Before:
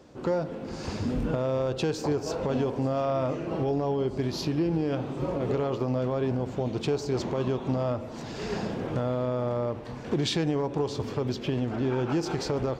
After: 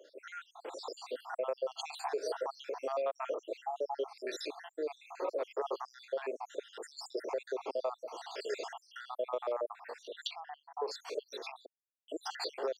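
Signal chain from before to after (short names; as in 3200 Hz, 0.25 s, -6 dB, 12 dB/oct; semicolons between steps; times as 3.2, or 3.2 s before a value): random spectral dropouts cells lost 73%; 11.66–12.08 mute; steep high-pass 420 Hz 36 dB/oct; 3.68–4.33 dynamic EQ 1700 Hz, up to +5 dB, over -55 dBFS, Q 1.4; compressor, threshold -32 dBFS, peak gain reduction 7.5 dB; 10.27–10.88 air absorption 400 m; gain +1.5 dB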